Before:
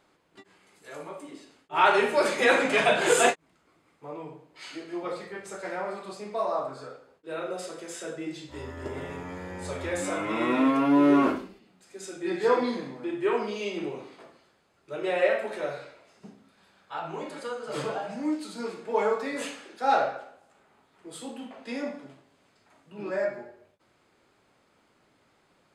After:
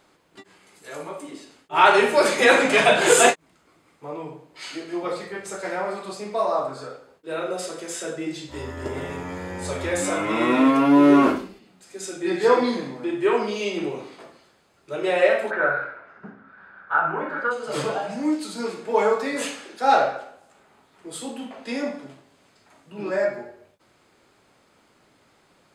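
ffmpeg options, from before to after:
-filter_complex "[0:a]asplit=3[a][b][c];[a]afade=t=out:st=15.5:d=0.02[d];[b]lowpass=f=1.5k:t=q:w=7.2,afade=t=in:st=15.5:d=0.02,afade=t=out:st=17.5:d=0.02[e];[c]afade=t=in:st=17.5:d=0.02[f];[d][e][f]amix=inputs=3:normalize=0,bass=f=250:g=0,treble=f=4k:g=3,volume=5.5dB"

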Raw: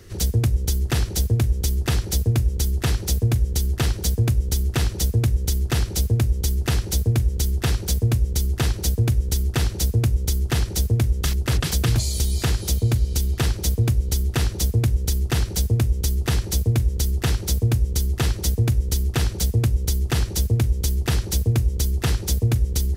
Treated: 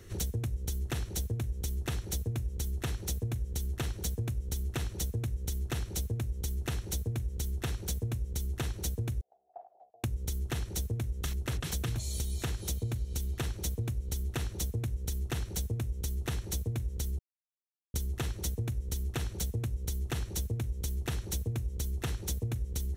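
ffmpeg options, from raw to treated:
-filter_complex "[0:a]asettb=1/sr,asplit=3[a][b][c];[a]atrim=end=9.214[d];[b]atrim=start=9.21:end=10.04,asetpts=PTS-STARTPTS,afade=t=in:d=0.004:c=qsin,afade=t=out:st=0.826:d=0.004:c=qsin,asuperpass=centerf=710:order=4:qfactor=6[e];[c]atrim=start=10.036[f];[d][e]acrossfade=d=0.004:c1=hsin:c2=qsin[g];[g][f]acrossfade=d=0.004:c1=qsin:c2=hsin,asplit=3[h][i][j];[h]atrim=end=17.19,asetpts=PTS-STARTPTS,afade=t=out:st=17.186:d=0.004:c=hsin[k];[i]atrim=start=17.19:end=17.94,asetpts=PTS-STARTPTS,volume=0[l];[j]atrim=start=17.94,asetpts=PTS-STARTPTS,afade=t=in:d=0.004:c=hsin[m];[k][l][m]concat=n=3:v=0:a=1,bandreject=f=4.8k:w=6.2,acompressor=threshold=-25dB:ratio=6,volume=-5.5dB"

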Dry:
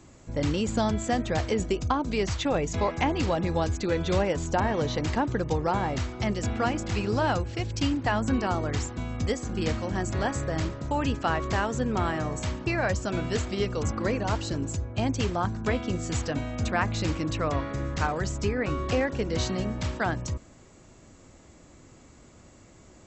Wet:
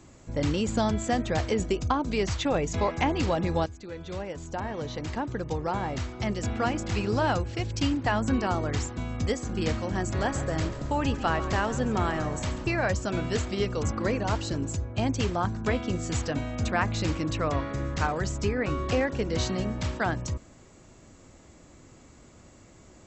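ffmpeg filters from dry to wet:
-filter_complex "[0:a]asettb=1/sr,asplit=3[a][b][c];[a]atrim=end=10.074[d];[b]atrim=start=10.07:end=12.67,asetpts=PTS-STARTPTS,afade=t=in:d=0.004:c=qsin,afade=t=out:st=2.596:d=0.004:c=qsin,asplit=7[e][f][g][h][i][j][k];[f]adelay=137,afreqshift=-36,volume=-14dB[l];[g]adelay=274,afreqshift=-72,volume=-18.9dB[m];[h]adelay=411,afreqshift=-108,volume=-23.8dB[n];[i]adelay=548,afreqshift=-144,volume=-28.6dB[o];[j]adelay=685,afreqshift=-180,volume=-33.5dB[p];[k]adelay=822,afreqshift=-216,volume=-38.4dB[q];[e][l][m][n][o][p][q]amix=inputs=7:normalize=0,atrim=end_sample=114660[r];[c]atrim=start=12.666[s];[d][r]acrossfade=d=0.004:c1=hsin:c2=qsin[t];[t][s]acrossfade=d=0.004:c1=qsin:c2=hsin,asplit=2[u][v];[u]atrim=end=3.66,asetpts=PTS-STARTPTS,afade=t=out:st=3.656:d=0.004:c=hsin:silence=0.16788[w];[v]atrim=start=3.66,asetpts=PTS-STARTPTS,afade=t=in:d=3.28:silence=0.16788[x];[w][x]concat=n=2:v=0:a=1"

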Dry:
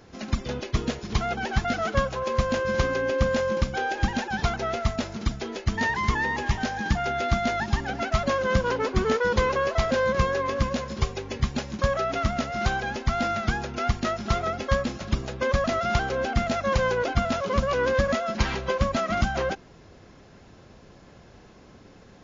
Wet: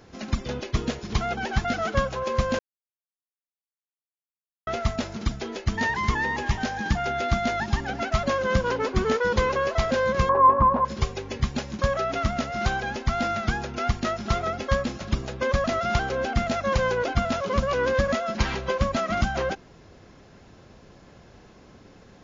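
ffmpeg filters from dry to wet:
-filter_complex "[0:a]asettb=1/sr,asplit=3[a][b][c];[a]atrim=end=10.294[d];[b]atrim=start=10.29:end=10.85,asetpts=PTS-STARTPTS,afade=t=in:d=0.004:c=qsin,afade=t=out:st=0.556:d=0.004:c=qsin,lowpass=f=1k:t=q:w=8.4[e];[c]atrim=start=10.846[f];[d][e]acrossfade=d=0.004:c1=hsin:c2=qsin[g];[g][f]acrossfade=d=0.004:c1=qsin:c2=hsin,asplit=3[h][i][j];[h]atrim=end=2.59,asetpts=PTS-STARTPTS,afade=t=out:st=2.586:d=0.004:c=hsin[k];[i]atrim=start=2.59:end=4.67,asetpts=PTS-STARTPTS,volume=0[l];[j]atrim=start=4.67,asetpts=PTS-STARTPTS,afade=t=in:d=0.004:c=hsin[m];[k][l][m]concat=n=3:v=0:a=1"

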